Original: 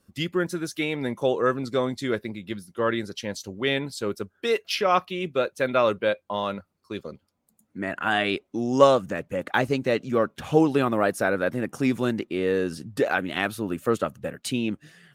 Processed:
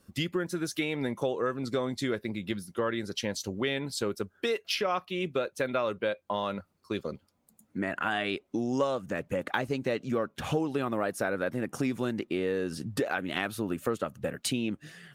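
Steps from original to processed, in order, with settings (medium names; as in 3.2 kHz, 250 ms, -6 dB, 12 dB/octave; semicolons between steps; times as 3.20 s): compression 4:1, threshold -31 dBFS, peak gain reduction 17 dB; trim +3 dB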